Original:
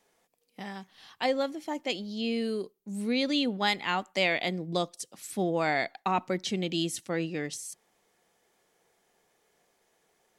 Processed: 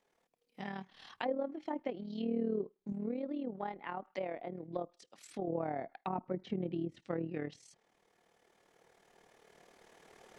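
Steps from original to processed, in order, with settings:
camcorder AGC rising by 6.3 dB per second
treble cut that deepens with the level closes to 770 Hz, closed at −25 dBFS
0:02.92–0:05.48: parametric band 110 Hz −10.5 dB 2.1 octaves
amplitude modulation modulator 38 Hz, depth 50%
high-shelf EQ 5,800 Hz −11 dB
level −3.5 dB

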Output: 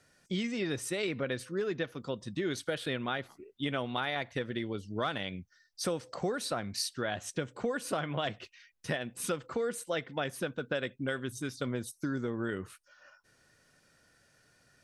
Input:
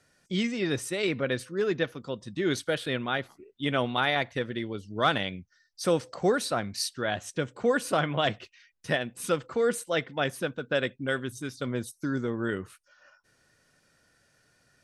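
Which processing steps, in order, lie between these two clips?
downward compressor 5 to 1, threshold −30 dBFS, peak gain reduction 10.5 dB

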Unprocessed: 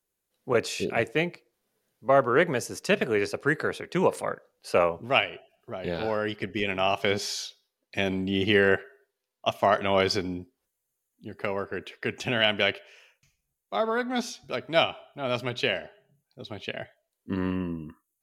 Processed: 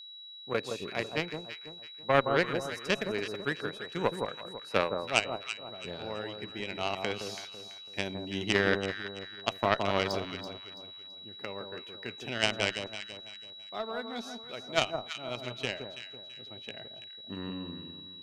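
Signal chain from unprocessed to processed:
harmonic generator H 3 −12 dB, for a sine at −7.5 dBFS
delay that swaps between a low-pass and a high-pass 166 ms, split 1,200 Hz, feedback 58%, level −5.5 dB
steady tone 3,900 Hz −45 dBFS

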